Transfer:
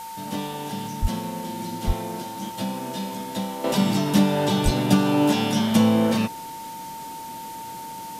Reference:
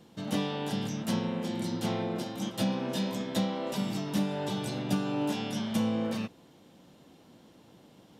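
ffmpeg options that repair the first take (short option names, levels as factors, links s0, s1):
-filter_complex "[0:a]bandreject=f=900:w=30,asplit=3[s0][s1][s2];[s0]afade=t=out:st=1.01:d=0.02[s3];[s1]highpass=f=140:w=0.5412,highpass=f=140:w=1.3066,afade=t=in:st=1.01:d=0.02,afade=t=out:st=1.13:d=0.02[s4];[s2]afade=t=in:st=1.13:d=0.02[s5];[s3][s4][s5]amix=inputs=3:normalize=0,asplit=3[s6][s7][s8];[s6]afade=t=out:st=1.86:d=0.02[s9];[s7]highpass=f=140:w=0.5412,highpass=f=140:w=1.3066,afade=t=in:st=1.86:d=0.02,afade=t=out:st=1.98:d=0.02[s10];[s8]afade=t=in:st=1.98:d=0.02[s11];[s9][s10][s11]amix=inputs=3:normalize=0,asplit=3[s12][s13][s14];[s12]afade=t=out:st=4.64:d=0.02[s15];[s13]highpass=f=140:w=0.5412,highpass=f=140:w=1.3066,afade=t=in:st=4.64:d=0.02,afade=t=out:st=4.76:d=0.02[s16];[s14]afade=t=in:st=4.76:d=0.02[s17];[s15][s16][s17]amix=inputs=3:normalize=0,afwtdn=0.0071,asetnsamples=n=441:p=0,asendcmd='3.64 volume volume -11dB',volume=1"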